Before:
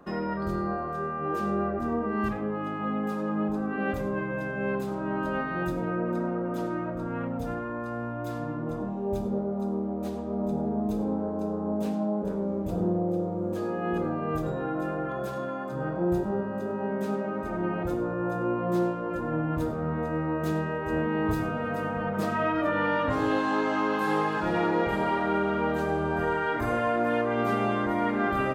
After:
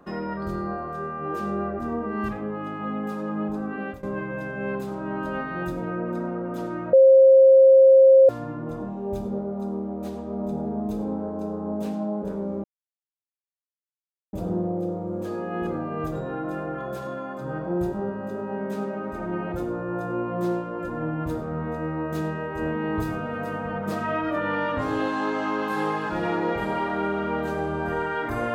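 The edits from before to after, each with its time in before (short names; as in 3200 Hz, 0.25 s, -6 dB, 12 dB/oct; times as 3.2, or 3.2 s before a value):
3.63–4.03 fade out equal-power, to -18.5 dB
6.93–8.29 bleep 533 Hz -9.5 dBFS
12.64 insert silence 1.69 s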